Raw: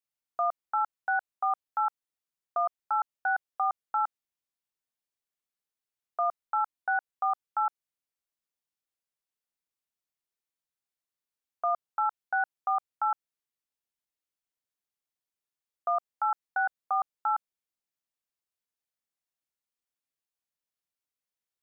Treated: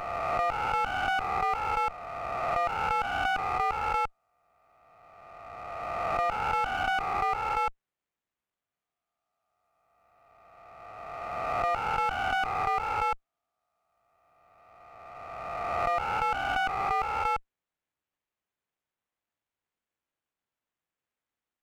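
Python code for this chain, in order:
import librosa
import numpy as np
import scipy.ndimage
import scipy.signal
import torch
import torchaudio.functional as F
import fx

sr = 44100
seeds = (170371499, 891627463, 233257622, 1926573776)

y = fx.spec_swells(x, sr, rise_s=2.41)
y = fx.running_max(y, sr, window=9)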